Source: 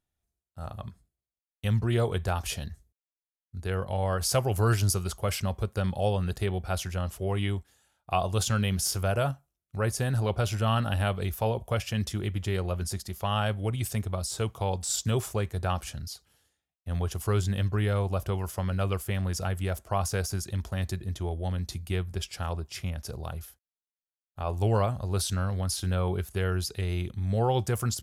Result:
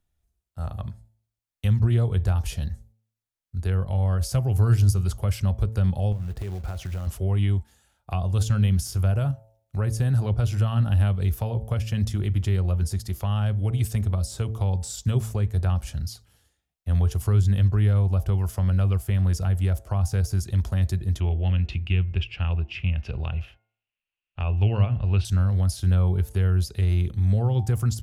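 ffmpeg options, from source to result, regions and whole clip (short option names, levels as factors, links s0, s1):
-filter_complex "[0:a]asettb=1/sr,asplit=3[s0][s1][s2];[s0]atrim=end=6.124[s3];[s1]atrim=start=6.12:end=7.07,asetpts=PTS-STARTPTS,afade=t=in:d=0.004:c=qsin,afade=t=out:st=0.946:d=0.004:c=qsin,equalizer=f=11000:t=o:w=2.7:g=-12,acompressor=threshold=0.02:ratio=16:attack=3.2:release=140:knee=1:detection=peak,acrusher=bits=4:mode=log:mix=0:aa=0.000001[s4];[s2]atrim=start=7.066[s5];[s3][s4]acrossfade=d=0.004:c1=hsin:c2=qsin[s6];[s6][s5]acrossfade=d=0.004:c1=qsin:c2=hsin,asettb=1/sr,asplit=3[s7][s8][s9];[s7]atrim=end=21.204[s10];[s8]atrim=start=21.2:end=25.25,asetpts=PTS-STARTPTS,afade=t=in:d=0.004:c=qsin,afade=t=out:st=4.046:d=0.004:c=qsin,lowpass=f=2700:t=q:w=9,bandreject=f=356.3:t=h:w=4,bandreject=f=712.6:t=h:w=4,bandreject=f=1068.9:t=h:w=4,bandreject=f=1425.2:t=h:w=4,bandreject=f=1781.5:t=h:w=4,bandreject=f=2137.8:t=h:w=4[s11];[s9]atrim=start=25.246[s12];[s10][s11]acrossfade=d=0.004:c1=hsin:c2=qsin[s13];[s13][s12]acrossfade=d=0.004:c1=qsin:c2=hsin,lowshelf=f=100:g=11.5,bandreject=f=110.5:t=h:w=4,bandreject=f=221:t=h:w=4,bandreject=f=331.5:t=h:w=4,bandreject=f=442:t=h:w=4,bandreject=f=552.5:t=h:w=4,bandreject=f=663:t=h:w=4,bandreject=f=773.5:t=h:w=4,bandreject=f=884:t=h:w=4,acrossover=split=240[s14][s15];[s15]acompressor=threshold=0.01:ratio=2.5[s16];[s14][s16]amix=inputs=2:normalize=0,volume=1.41"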